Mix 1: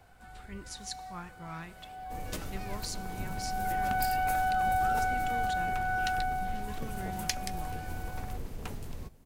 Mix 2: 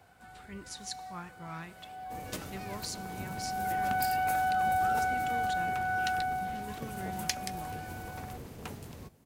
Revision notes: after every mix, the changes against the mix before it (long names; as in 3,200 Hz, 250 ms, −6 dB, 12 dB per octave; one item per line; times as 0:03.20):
master: add high-pass filter 93 Hz 12 dB per octave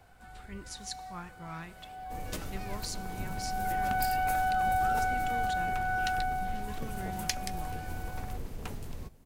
master: remove high-pass filter 93 Hz 12 dB per octave